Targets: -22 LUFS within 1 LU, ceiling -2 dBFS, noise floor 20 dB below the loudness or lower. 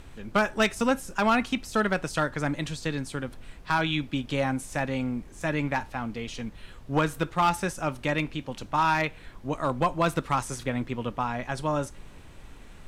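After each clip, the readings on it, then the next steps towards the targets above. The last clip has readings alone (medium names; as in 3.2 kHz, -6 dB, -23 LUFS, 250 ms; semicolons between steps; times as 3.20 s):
clipped samples 0.4%; clipping level -15.5 dBFS; noise floor -47 dBFS; noise floor target -48 dBFS; loudness -28.0 LUFS; peak level -15.5 dBFS; loudness target -22.0 LUFS
-> clip repair -15.5 dBFS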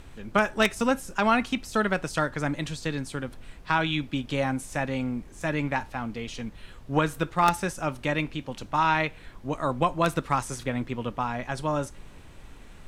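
clipped samples 0.0%; noise floor -47 dBFS; noise floor target -48 dBFS
-> noise print and reduce 6 dB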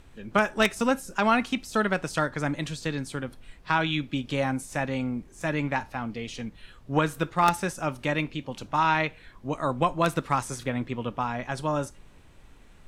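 noise floor -52 dBFS; loudness -27.5 LUFS; peak level -6.5 dBFS; loudness target -22.0 LUFS
-> trim +5.5 dB; peak limiter -2 dBFS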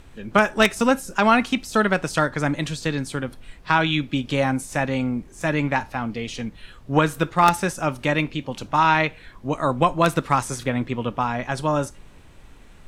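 loudness -22.5 LUFS; peak level -2.0 dBFS; noise floor -47 dBFS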